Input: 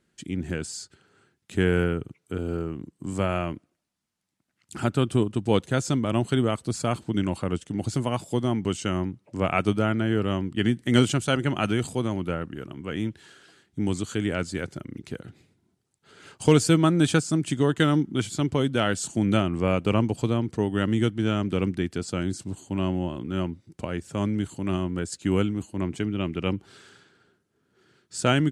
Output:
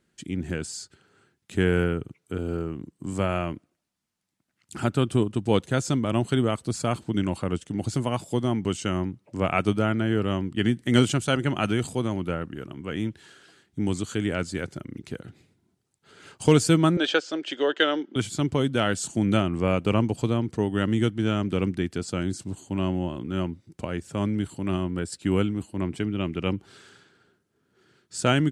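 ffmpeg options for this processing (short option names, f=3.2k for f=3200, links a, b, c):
-filter_complex "[0:a]asettb=1/sr,asplit=3[a][b][c];[a]atrim=end=16.974[d];[b]atrim=start=16.97:end=18.16,asetpts=PTS-STARTPTS,afade=t=in:d=0.004:c=qsin,afade=t=out:st=1.186:d=0.004:c=qsin,highpass=f=350:w=0.5412,highpass=f=350:w=1.3066,equalizer=f=550:t=q:w=4:g=7,equalizer=f=1.1k:t=q:w=4:g=-3,equalizer=f=1.6k:t=q:w=4:g=5,equalizer=f=3.1k:t=q:w=4:g=7,lowpass=f=5.3k:w=0.5412,lowpass=f=5.3k:w=1.3066[e];[c]atrim=start=18.156[f];[d][e]acrossfade=d=0.004:c1=hsin:c2=qsin[g];[g][f]acrossfade=d=0.004:c1=qsin:c2=hsin,asettb=1/sr,asplit=3[h][i][j];[h]atrim=end=24.124[k];[i]atrim=start=24.12:end=26.16,asetpts=PTS-STARTPTS,afade=t=in:d=0.004:c=qsin,afade=t=out:st=2.036:d=0.004:c=qsin,bandreject=f=6.6k:w=5.7[l];[j]atrim=start=26.156[m];[k][l]acrossfade=d=0.004:c1=hsin:c2=qsin[n];[n][m]acrossfade=d=0.004:c1=qsin:c2=hsin"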